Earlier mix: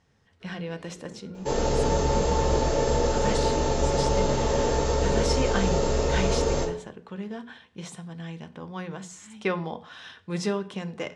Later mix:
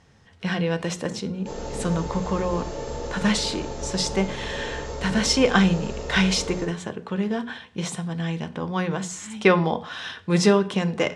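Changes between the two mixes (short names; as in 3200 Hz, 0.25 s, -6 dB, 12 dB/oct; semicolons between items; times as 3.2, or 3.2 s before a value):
speech +10.0 dB; second sound -8.5 dB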